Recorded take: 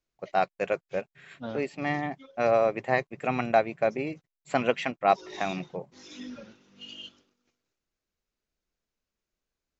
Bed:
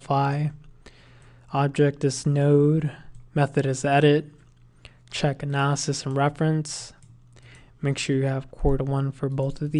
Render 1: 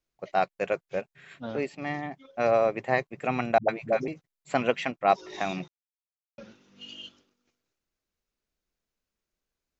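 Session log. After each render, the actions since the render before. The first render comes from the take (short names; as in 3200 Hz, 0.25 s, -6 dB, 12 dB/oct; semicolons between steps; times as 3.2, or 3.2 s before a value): 1.75–2.25 gain -3.5 dB; 3.58–4.08 dispersion highs, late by 0.105 s, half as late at 310 Hz; 5.68–6.38 mute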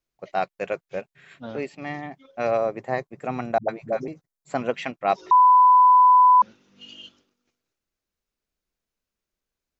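2.57–4.74 bell 2700 Hz -8.5 dB 1.1 oct; 5.31–6.42 bleep 1000 Hz -10.5 dBFS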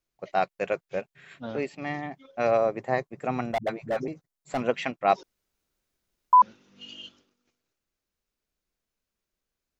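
3.47–4.6 overloaded stage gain 22.5 dB; 5.23–6.33 room tone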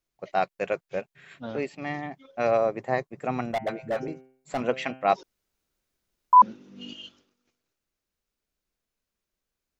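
3.45–5.14 de-hum 130.4 Hz, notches 24; 6.36–6.93 bell 260 Hz +13.5 dB 2.1 oct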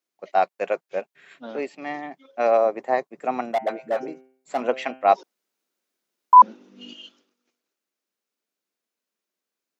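HPF 220 Hz 24 dB/oct; dynamic EQ 770 Hz, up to +6 dB, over -36 dBFS, Q 1.1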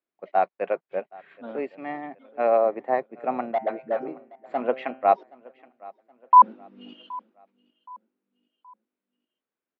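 air absorption 460 m; feedback echo 0.772 s, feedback 42%, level -23 dB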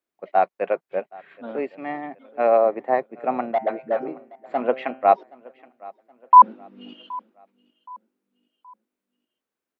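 gain +3 dB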